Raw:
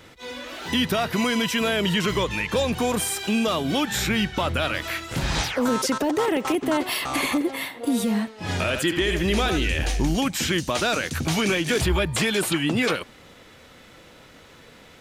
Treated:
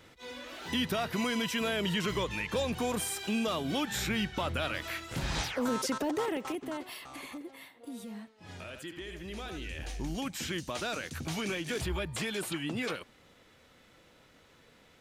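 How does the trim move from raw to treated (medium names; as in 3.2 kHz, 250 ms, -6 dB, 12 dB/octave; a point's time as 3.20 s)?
6.15 s -8.5 dB
7.14 s -20 dB
9.26 s -20 dB
10.28 s -12 dB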